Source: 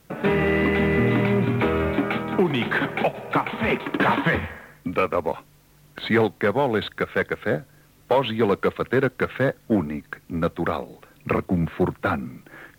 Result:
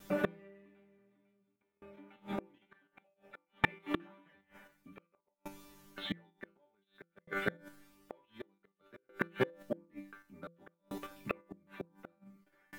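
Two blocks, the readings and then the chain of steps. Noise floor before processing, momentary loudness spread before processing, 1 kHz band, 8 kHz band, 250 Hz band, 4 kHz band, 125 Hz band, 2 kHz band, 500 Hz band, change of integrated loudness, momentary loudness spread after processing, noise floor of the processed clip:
-55 dBFS, 11 LU, -20.5 dB, no reading, -20.5 dB, -16.5 dB, -23.5 dB, -16.5 dB, -20.5 dB, -17.0 dB, 23 LU, -83 dBFS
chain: chord resonator G3 fifth, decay 0.34 s; in parallel at 0 dB: level held to a coarse grid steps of 21 dB; on the sum: inverted gate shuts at -27 dBFS, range -34 dB; de-hum 169.1 Hz, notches 3; sawtooth tremolo in dB decaying 0.55 Hz, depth 33 dB; trim +15.5 dB

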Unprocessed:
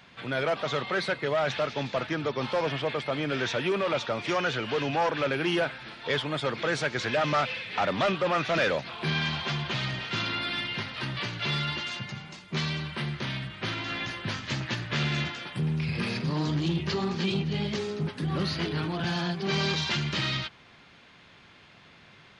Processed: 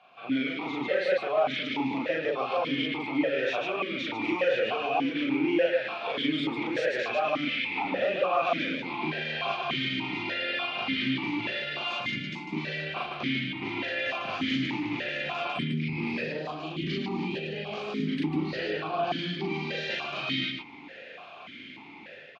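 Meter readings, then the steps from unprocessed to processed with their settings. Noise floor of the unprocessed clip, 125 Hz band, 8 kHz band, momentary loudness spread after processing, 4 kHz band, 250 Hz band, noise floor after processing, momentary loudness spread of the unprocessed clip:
-54 dBFS, -8.0 dB, under -10 dB, 8 LU, -1.5 dB, +2.0 dB, -46 dBFS, 6 LU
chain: level rider gain up to 11 dB; peak limiter -15 dBFS, peak gain reduction 9.5 dB; compression, threshold -24 dBFS, peak gain reduction 6 dB; on a send: loudspeakers at several distances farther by 13 m 0 dB, 51 m -2 dB; on the sum: stepped vowel filter 3.4 Hz; trim +6.5 dB

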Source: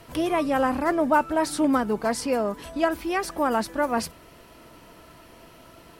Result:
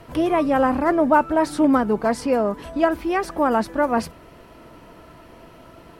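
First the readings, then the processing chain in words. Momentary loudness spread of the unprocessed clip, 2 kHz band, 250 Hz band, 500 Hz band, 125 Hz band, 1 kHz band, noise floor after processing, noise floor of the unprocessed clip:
6 LU, +2.0 dB, +5.0 dB, +4.5 dB, +5.0 dB, +4.0 dB, -46 dBFS, -50 dBFS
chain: treble shelf 2.8 kHz -10.5 dB; trim +5 dB

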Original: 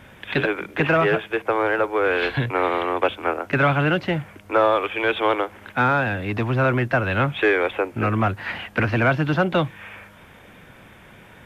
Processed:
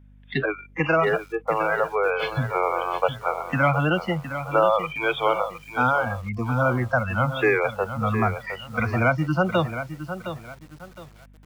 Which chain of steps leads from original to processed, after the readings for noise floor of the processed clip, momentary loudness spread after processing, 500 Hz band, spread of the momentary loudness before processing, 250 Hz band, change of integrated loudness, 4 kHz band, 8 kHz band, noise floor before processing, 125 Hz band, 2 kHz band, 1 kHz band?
-50 dBFS, 11 LU, -2.0 dB, 7 LU, -3.0 dB, -2.0 dB, -4.0 dB, no reading, -47 dBFS, -1.5 dB, -3.0 dB, -1.0 dB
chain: spectral noise reduction 28 dB; hum 50 Hz, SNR 26 dB; bit-crushed delay 713 ms, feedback 35%, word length 7-bit, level -10 dB; trim -1 dB

